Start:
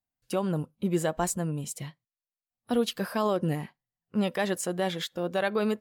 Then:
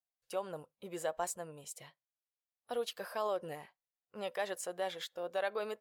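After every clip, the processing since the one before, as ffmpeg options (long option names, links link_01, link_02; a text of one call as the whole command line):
ffmpeg -i in.wav -af "lowshelf=frequency=360:width_type=q:width=1.5:gain=-12.5,volume=-9dB" out.wav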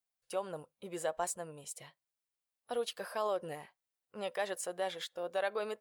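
ffmpeg -i in.wav -af "aexciter=amount=1:drive=3.3:freq=8900,volume=1dB" out.wav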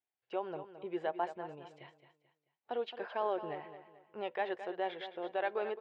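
ffmpeg -i in.wav -af "highpass=110,equalizer=frequency=190:width_type=q:width=4:gain=-6,equalizer=frequency=370:width_type=q:width=4:gain=7,equalizer=frequency=530:width_type=q:width=4:gain=-5,equalizer=frequency=840:width_type=q:width=4:gain=5,equalizer=frequency=1200:width_type=q:width=4:gain=-5,lowpass=frequency=3000:width=0.5412,lowpass=frequency=3000:width=1.3066,aecho=1:1:218|436|654|872:0.266|0.0931|0.0326|0.0114" out.wav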